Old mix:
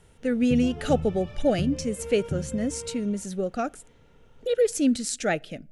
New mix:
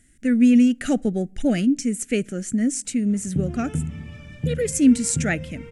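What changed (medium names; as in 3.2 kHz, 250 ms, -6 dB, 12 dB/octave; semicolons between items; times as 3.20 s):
background: entry +2.85 s; master: add graphic EQ 125/250/500/1000/2000/4000/8000 Hz +4/+8/-5/-6/+8/-6/+9 dB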